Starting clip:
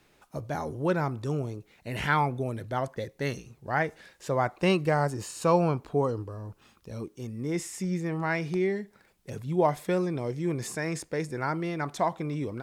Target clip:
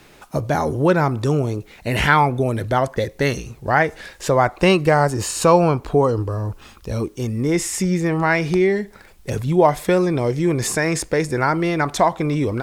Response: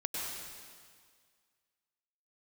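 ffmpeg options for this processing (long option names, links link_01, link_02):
-filter_complex "[0:a]asubboost=boost=4.5:cutoff=64,asplit=2[link_01][link_02];[link_02]acompressor=threshold=-33dB:ratio=6,volume=3dB[link_03];[link_01][link_03]amix=inputs=2:normalize=0,volume=7.5dB"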